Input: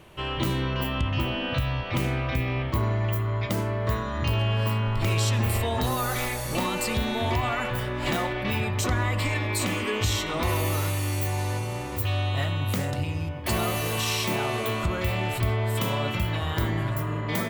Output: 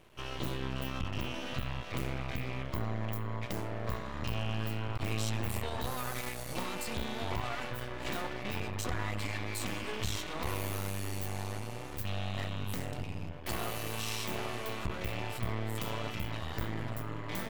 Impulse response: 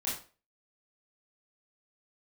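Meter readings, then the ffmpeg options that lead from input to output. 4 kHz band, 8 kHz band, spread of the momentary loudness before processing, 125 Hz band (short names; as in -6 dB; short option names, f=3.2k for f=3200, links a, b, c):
-9.5 dB, -9.5 dB, 3 LU, -12.0 dB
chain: -af "aeval=exprs='max(val(0),0)':c=same,volume=-6dB"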